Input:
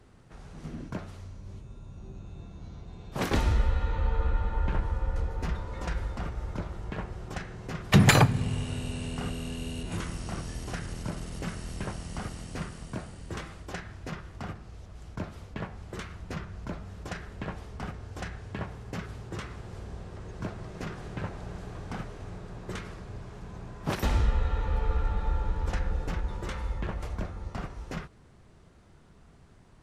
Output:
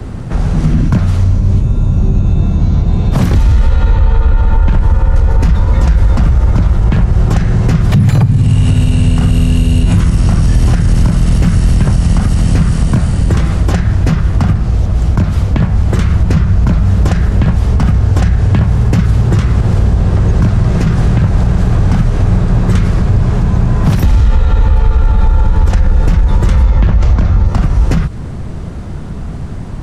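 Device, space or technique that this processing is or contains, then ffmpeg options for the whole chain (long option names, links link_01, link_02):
mastering chain: -filter_complex "[0:a]asettb=1/sr,asplit=3[link_01][link_02][link_03];[link_01]atrim=end=26.634[link_04];[link_02]atrim=start=26.63:end=27.46,asetpts=PTS-STARTPTS,afade=type=in:duration=0.004:curve=qsin,afade=type=out:start_time=0.826:duration=0.004:curve=qsin,lowpass=frequency=6700:width=0.5412,lowpass=frequency=6700:width=1.3066[link_05];[link_03]atrim=start=27.456[link_06];[link_04][link_05]acrossfade=duration=0.004:curve1=hsin:curve2=qsin[link_07];[link_07][link_06]acrossfade=duration=0.004:curve1=qsin:curve2=hsin,equalizer=frequency=390:width_type=o:width=0.78:gain=-4,acrossover=split=170|960|3800[link_08][link_09][link_10][link_11];[link_08]acompressor=threshold=-34dB:ratio=4[link_12];[link_09]acompressor=threshold=-51dB:ratio=4[link_13];[link_10]acompressor=threshold=-50dB:ratio=4[link_14];[link_11]acompressor=threshold=-52dB:ratio=4[link_15];[link_12][link_13][link_14][link_15]amix=inputs=4:normalize=0,acompressor=threshold=-41dB:ratio=1.5,asoftclip=type=tanh:threshold=-29.5dB,tiltshelf=frequency=640:gain=6,alimiter=level_in=30.5dB:limit=-1dB:release=50:level=0:latency=1,volume=-1dB"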